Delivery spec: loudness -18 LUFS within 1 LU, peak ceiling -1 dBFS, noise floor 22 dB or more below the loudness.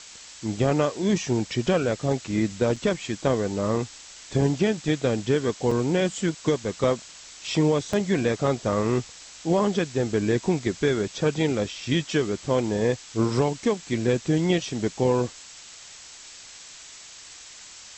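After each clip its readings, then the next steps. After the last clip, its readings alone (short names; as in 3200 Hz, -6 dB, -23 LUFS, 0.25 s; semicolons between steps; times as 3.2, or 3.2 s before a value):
dropouts 3; longest dropout 4.1 ms; noise floor -45 dBFS; noise floor target -47 dBFS; loudness -25.0 LUFS; peak -10.0 dBFS; loudness target -18.0 LUFS
-> interpolate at 2.76/5.71/7.93, 4.1 ms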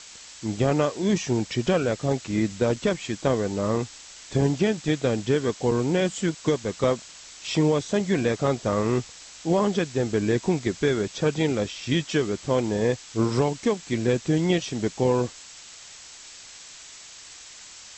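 dropouts 0; noise floor -45 dBFS; noise floor target -47 dBFS
-> denoiser 6 dB, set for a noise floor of -45 dBFS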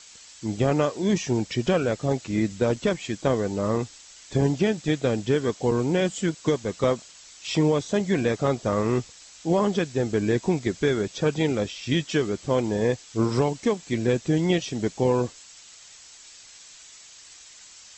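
noise floor -48 dBFS; loudness -25.0 LUFS; peak -10.0 dBFS; loudness target -18.0 LUFS
-> gain +7 dB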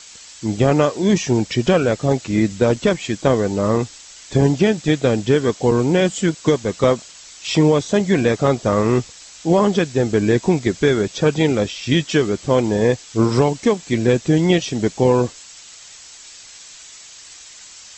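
loudness -18.0 LUFS; peak -3.0 dBFS; noise floor -41 dBFS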